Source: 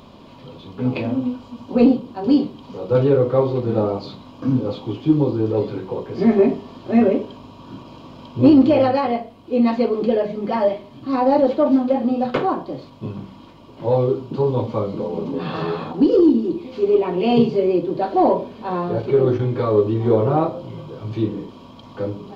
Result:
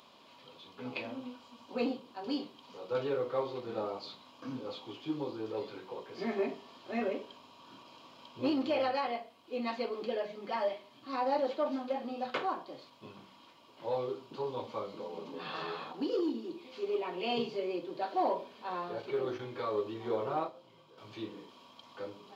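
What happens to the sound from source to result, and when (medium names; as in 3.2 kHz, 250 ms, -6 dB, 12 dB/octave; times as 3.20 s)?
20.34–20.98 s: upward expansion, over -31 dBFS
whole clip: high-pass 1.5 kHz 6 dB/octave; trim -6 dB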